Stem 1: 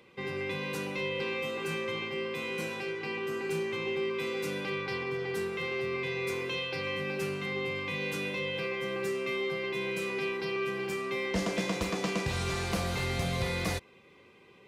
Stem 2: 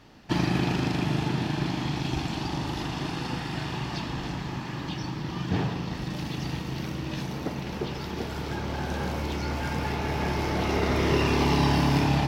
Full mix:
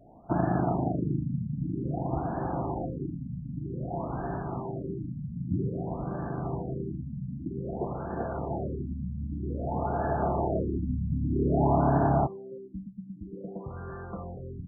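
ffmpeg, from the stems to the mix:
-filter_complex "[0:a]adelay=1400,volume=-6dB[a];[1:a]equalizer=f=680:t=o:w=0.29:g=14,volume=-2dB[b];[a][b]amix=inputs=2:normalize=0,afftfilt=real='re*lt(b*sr/1024,250*pow(1800/250,0.5+0.5*sin(2*PI*0.52*pts/sr)))':imag='im*lt(b*sr/1024,250*pow(1800/250,0.5+0.5*sin(2*PI*0.52*pts/sr)))':win_size=1024:overlap=0.75"

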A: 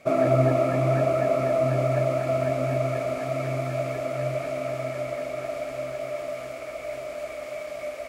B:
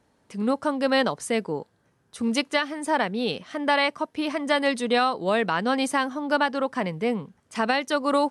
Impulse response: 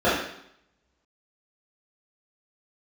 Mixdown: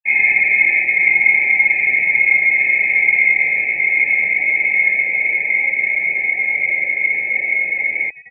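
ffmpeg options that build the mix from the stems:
-filter_complex "[0:a]aeval=exprs='(tanh(35.5*val(0)+0.35)-tanh(0.35))/35.5':c=same,acrusher=bits=6:mix=0:aa=0.000001,volume=1dB,asplit=2[a][b];[b]volume=-4dB[c];[1:a]acompressor=threshold=-24dB:ratio=10,adelay=1850,volume=-8.5dB[d];[2:a]atrim=start_sample=2205[e];[c][e]afir=irnorm=-1:irlink=0[f];[a][d][f]amix=inputs=3:normalize=0,asubboost=boost=12:cutoff=82,lowpass=f=2.4k:t=q:w=0.5098,lowpass=f=2.4k:t=q:w=0.6013,lowpass=f=2.4k:t=q:w=0.9,lowpass=f=2.4k:t=q:w=2.563,afreqshift=-2800,afftfilt=real='re*eq(mod(floor(b*sr/1024/870),2),0)':imag='im*eq(mod(floor(b*sr/1024/870),2),0)':win_size=1024:overlap=0.75"

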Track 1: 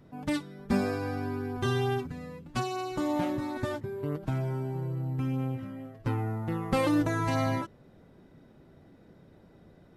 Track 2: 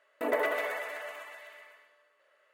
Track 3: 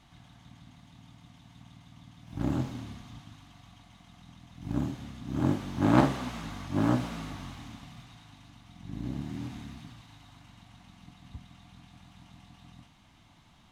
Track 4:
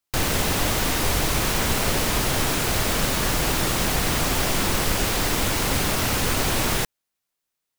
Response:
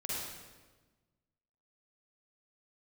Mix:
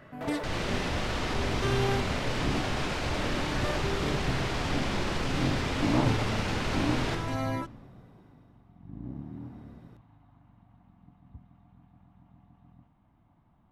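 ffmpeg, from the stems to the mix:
-filter_complex "[0:a]tremolo=f=0.51:d=0.86,volume=0dB[a];[1:a]asplit=2[b][c];[c]highpass=f=720:p=1,volume=38dB,asoftclip=type=tanh:threshold=-15dB[d];[b][d]amix=inputs=2:normalize=0,lowpass=f=1k:p=1,volume=-6dB,volume=-13dB[e];[2:a]lowpass=1k,volume=-4dB[f];[3:a]lowpass=4.1k,adelay=300,volume=-6dB,asplit=2[g][h];[h]volume=-7.5dB[i];[e][g]amix=inputs=2:normalize=0,alimiter=level_in=4dB:limit=-24dB:level=0:latency=1,volume=-4dB,volume=0dB[j];[4:a]atrim=start_sample=2205[k];[i][k]afir=irnorm=-1:irlink=0[l];[a][f][j][l]amix=inputs=4:normalize=0"

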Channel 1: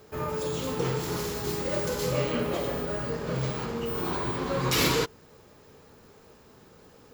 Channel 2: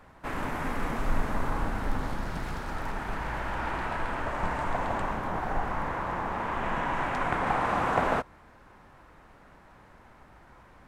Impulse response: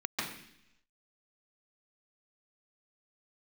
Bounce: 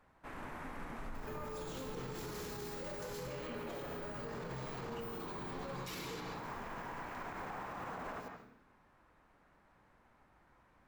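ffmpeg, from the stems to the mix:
-filter_complex "[0:a]acompressor=threshold=-35dB:ratio=6,adelay=1150,volume=-1dB,asplit=2[a][b];[b]volume=-10.5dB[c];[1:a]volume=-15dB,asplit=2[d][e];[e]volume=-14dB[f];[2:a]atrim=start_sample=2205[g];[c][f]amix=inputs=2:normalize=0[h];[h][g]afir=irnorm=-1:irlink=0[i];[a][d][i]amix=inputs=3:normalize=0,alimiter=level_in=11dB:limit=-24dB:level=0:latency=1:release=60,volume=-11dB"

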